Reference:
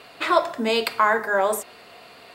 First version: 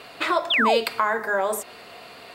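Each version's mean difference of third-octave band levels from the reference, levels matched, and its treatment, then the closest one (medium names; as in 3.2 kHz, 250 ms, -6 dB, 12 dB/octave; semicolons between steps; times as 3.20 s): 2.5 dB: compression 2:1, threshold -27 dBFS, peak gain reduction 8.5 dB; painted sound fall, 0.50–0.78 s, 430–3800 Hz -23 dBFS; trim +3 dB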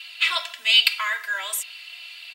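12.0 dB: resonant high-pass 2.8 kHz, resonance Q 3; comb 3 ms, depth 78%; trim +1.5 dB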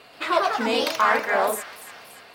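4.0 dB: ever faster or slower copies 130 ms, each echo +2 st, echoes 3; feedback echo behind a high-pass 287 ms, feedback 52%, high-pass 1.9 kHz, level -12 dB; trim -3 dB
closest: first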